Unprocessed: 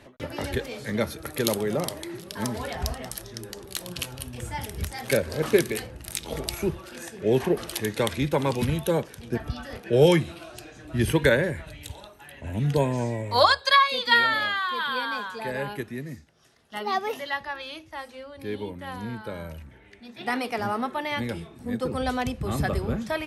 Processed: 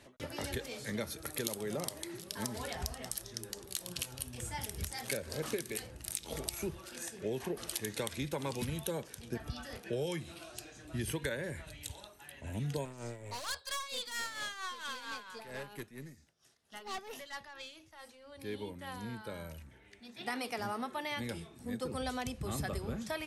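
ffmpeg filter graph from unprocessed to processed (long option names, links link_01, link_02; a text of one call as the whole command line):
ffmpeg -i in.wav -filter_complex "[0:a]asettb=1/sr,asplit=3[link_01][link_02][link_03];[link_01]atrim=end=12.854[link_04];[link_02]atrim=start=12.85:end=18.32,asetpts=PTS-STARTPTS,afade=type=in:duration=0.004:curve=qsin,afade=type=out:start_time=5.466:duration=0.004:curve=qsin,aeval=exprs='(tanh(25.1*val(0)+0.45)-tanh(0.45))/25.1':channel_layout=same,tremolo=f=4.4:d=0.65[link_05];[link_03]atrim=start=18.316[link_06];[link_04][link_05]acrossfade=duration=0.004:curve1=hsin:curve2=qsin[link_07];[link_07][link_06]acrossfade=duration=0.004:curve1=qsin:curve2=hsin,equalizer=frequency=8200:width_type=o:width=2:gain=9,acompressor=threshold=-24dB:ratio=10,volume=-8.5dB" out.wav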